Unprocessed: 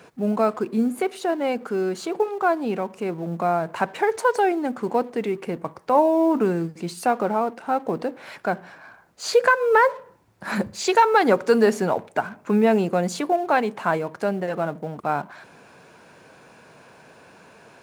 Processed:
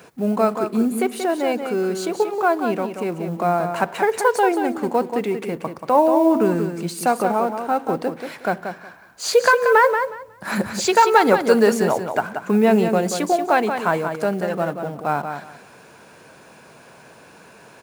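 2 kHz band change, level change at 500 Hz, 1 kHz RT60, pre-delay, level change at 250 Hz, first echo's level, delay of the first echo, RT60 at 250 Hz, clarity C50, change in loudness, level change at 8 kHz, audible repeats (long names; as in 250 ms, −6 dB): +3.0 dB, +2.5 dB, no reverb audible, no reverb audible, +3.0 dB, −7.5 dB, 182 ms, no reverb audible, no reverb audible, +3.0 dB, +6.5 dB, 2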